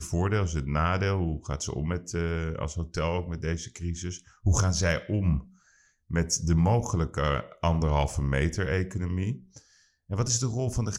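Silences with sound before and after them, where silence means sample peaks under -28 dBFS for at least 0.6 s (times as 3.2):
5.39–6.11
9.33–10.11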